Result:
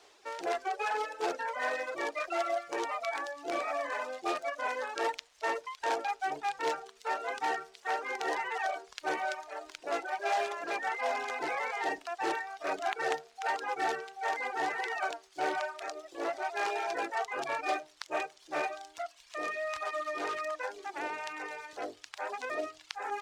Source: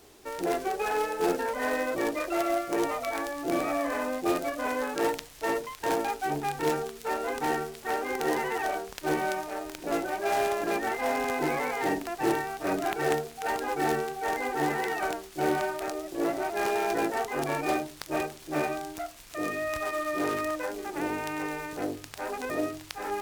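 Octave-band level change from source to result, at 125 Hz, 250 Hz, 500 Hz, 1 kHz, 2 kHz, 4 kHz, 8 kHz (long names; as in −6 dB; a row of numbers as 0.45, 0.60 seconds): below −20 dB, −14.0 dB, −6.5 dB, −3.0 dB, −2.0 dB, −2.5 dB, −8.0 dB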